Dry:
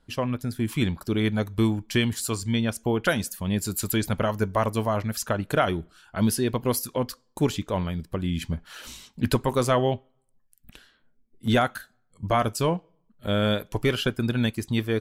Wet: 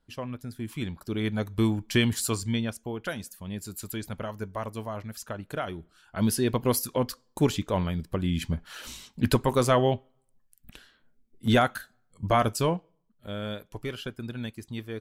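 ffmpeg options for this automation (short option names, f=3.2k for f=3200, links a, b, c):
-af "volume=11dB,afade=t=in:st=0.88:d=1.32:silence=0.334965,afade=t=out:st=2.2:d=0.66:silence=0.281838,afade=t=in:st=5.76:d=0.75:silence=0.316228,afade=t=out:st=12.49:d=0.78:silence=0.281838"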